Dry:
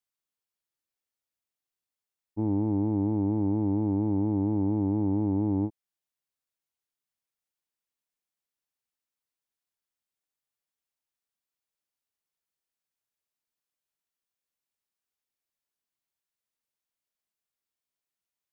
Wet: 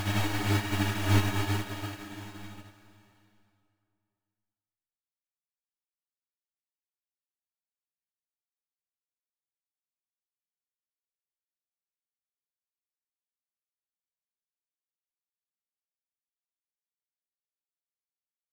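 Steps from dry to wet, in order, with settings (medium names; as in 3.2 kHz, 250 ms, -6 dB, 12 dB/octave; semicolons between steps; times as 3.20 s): square wave that keeps the level; spectral gate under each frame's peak -30 dB strong; graphic EQ 125/250/500/1000 Hz -4/-10/-6/-4 dB; in parallel at +1.5 dB: peak limiter -34.5 dBFS, peak gain reduction 12 dB; on the sum: companded quantiser 4-bit; Paulstretch 4.1×, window 1.00 s, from 5.21 s; echo from a far wall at 180 m, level -23 dB; reverberation RT60 0.50 s, pre-delay 25 ms, DRR 4 dB; upward expansion 2.5:1, over -36 dBFS; trim +2.5 dB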